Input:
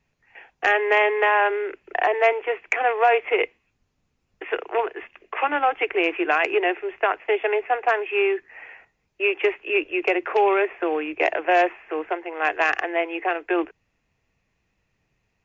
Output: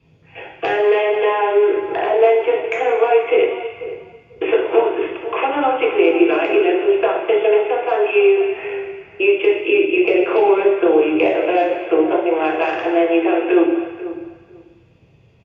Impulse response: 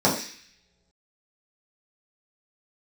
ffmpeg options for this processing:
-filter_complex "[0:a]acompressor=threshold=-31dB:ratio=5,asplit=2[a][b];[b]adelay=492,lowpass=f=1.7k:p=1,volume=-13.5dB,asplit=2[c][d];[d]adelay=492,lowpass=f=1.7k:p=1,volume=0.16[e];[a][c][e]amix=inputs=3:normalize=0[f];[1:a]atrim=start_sample=2205,asetrate=26460,aresample=44100[g];[f][g]afir=irnorm=-1:irlink=0,volume=-5.5dB"

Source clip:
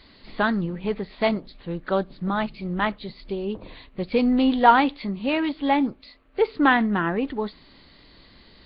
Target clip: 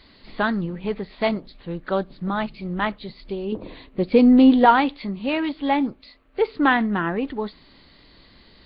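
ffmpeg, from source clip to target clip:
-filter_complex "[0:a]asettb=1/sr,asplit=3[a][b][c];[a]atrim=end=3.524[d];[b]atrim=start=3.52:end=4.65,asetpts=PTS-STARTPTS,afade=t=in:d=0.004:c=qsin,afade=t=out:st=1.126:d=0.004:c=qsin,equalizer=f=320:t=o:w=1.9:g=8[e];[c]atrim=start=4.646[f];[d][e]acrossfade=d=0.004:c1=hsin:c2=qsin[g];[g][f]acrossfade=d=0.004:c1=qsin:c2=hsin"

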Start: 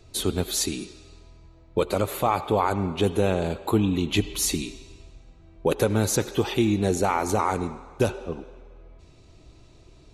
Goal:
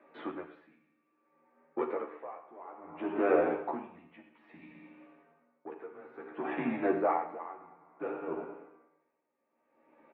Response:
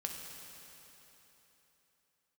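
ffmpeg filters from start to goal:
-filter_complex "[0:a]asoftclip=type=tanh:threshold=-12.5dB,asettb=1/sr,asplit=3[a][b][c];[a]atrim=end=0.594[d];[b]atrim=start=0.59:end=2.81,asetpts=PTS-STARTPTS,afade=t=in:d=0.004:c=qsin,afade=t=out:st=2.216:d=0.004:c=qsin,flanger=delay=6.4:depth=3.9:regen=-52:speed=1.6:shape=sinusoidal[e];[c]atrim=start=2.806[f];[d][e]acrossfade=d=0.004:c1=hsin:c2=qsin[g];[g][f]acrossfade=d=0.004:c1=qsin:c2=hsin,highpass=f=470:t=q:w=0.5412,highpass=f=470:t=q:w=1.307,lowpass=f=2.1k:t=q:w=0.5176,lowpass=f=2.1k:t=q:w=0.7071,lowpass=f=2.1k:t=q:w=1.932,afreqshift=-89,asplit=2[h][i];[i]adelay=13,volume=-3dB[j];[h][j]amix=inputs=2:normalize=0,aecho=1:1:206:0.158[k];[1:a]atrim=start_sample=2205,atrim=end_sample=6174[l];[k][l]afir=irnorm=-1:irlink=0,aeval=exprs='val(0)*pow(10,-23*(0.5-0.5*cos(2*PI*0.59*n/s))/20)':c=same,volume=3.5dB"

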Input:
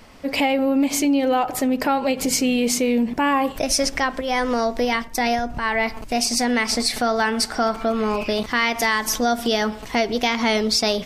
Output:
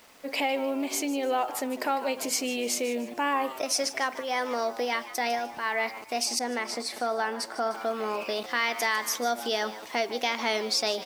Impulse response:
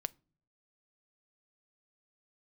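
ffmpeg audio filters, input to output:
-filter_complex "[0:a]highpass=360,acrusher=bits=7:mix=0:aa=0.000001,asplit=2[a][b];[b]asplit=3[c][d][e];[c]adelay=151,afreqshift=110,volume=-15dB[f];[d]adelay=302,afreqshift=220,volume=-23.9dB[g];[e]adelay=453,afreqshift=330,volume=-32.7dB[h];[f][g][h]amix=inputs=3:normalize=0[i];[a][i]amix=inputs=2:normalize=0,asettb=1/sr,asplit=3[j][k][l];[j]atrim=end=6.394[m];[k]atrim=start=6.39:end=7.71,asetpts=PTS-STARTPTS,afade=t=in:d=0.004:c=qsin,afade=t=out:st=1.316:d=0.004:c=qsin,adynamicequalizer=threshold=0.0158:dfrequency=1500:dqfactor=0.7:tfrequency=1500:tqfactor=0.7:attack=5:release=100:ratio=0.375:range=3:mode=cutabove:tftype=highshelf[n];[l]atrim=start=7.706[o];[m][n]acrossfade=d=0.004:c1=hsin:c2=qsin[p];[p][o]acrossfade=d=0.004:c1=qsin:c2=hsin,volume=-6.5dB"

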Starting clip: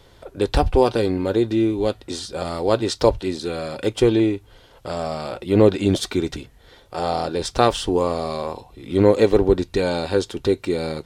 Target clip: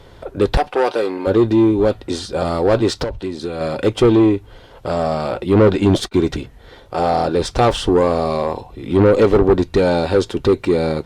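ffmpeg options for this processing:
-filter_complex "[0:a]asoftclip=type=tanh:threshold=-15dB,asettb=1/sr,asplit=3[a][b][c];[a]atrim=end=0.574[d];[b]atrim=start=0.57:end=1.27,asetpts=PTS-STARTPTS,afade=t=in:d=0.004:c=qsin,afade=t=out:st=0.696:d=0.004:c=qsin,highpass=490[e];[c]atrim=start=1.266[f];[d][e]acrossfade=d=0.004:c1=hsin:c2=qsin[g];[g][f]acrossfade=d=0.004:c1=qsin:c2=hsin,asettb=1/sr,asplit=3[h][i][j];[h]atrim=end=3.034[k];[i]atrim=start=3.03:end=3.61,asetpts=PTS-STARTPTS,afade=t=in:d=0.004:c=qsin,afade=t=out:st=0.576:d=0.004:c=qsin,acompressor=threshold=-29dB:ratio=16[l];[j]atrim=start=3.606[m];[k][l]acrossfade=d=0.004:c1=hsin:c2=qsin[n];[n][m]acrossfade=d=0.004:c1=qsin:c2=hsin,asettb=1/sr,asplit=3[o][p][q];[o]atrim=end=5.684[r];[p]atrim=start=5.68:end=6.14,asetpts=PTS-STARTPTS,afade=t=in:d=0.004:c=qsin,afade=t=out:st=0.456:d=0.004:c=qsin,agate=range=-29dB:threshold=-27dB:ratio=16:detection=peak[s];[q]atrim=start=6.136[t];[r][s]acrossfade=d=0.004:c1=hsin:c2=qsin[u];[u][t]acrossfade=d=0.004:c1=qsin:c2=hsin,highshelf=f=3.2k:g=-9,volume=8.5dB" -ar 48000 -c:a libopus -b:a 64k

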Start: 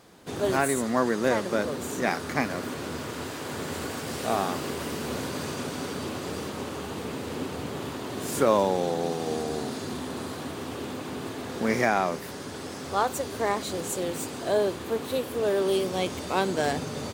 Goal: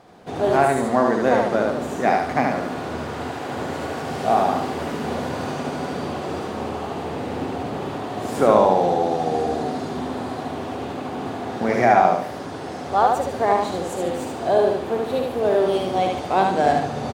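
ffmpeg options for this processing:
-af "lowpass=f=2.5k:p=1,equalizer=f=740:t=o:w=0.45:g=9,aecho=1:1:74|148|222|296|370:0.708|0.269|0.102|0.0388|0.0148,volume=3dB"

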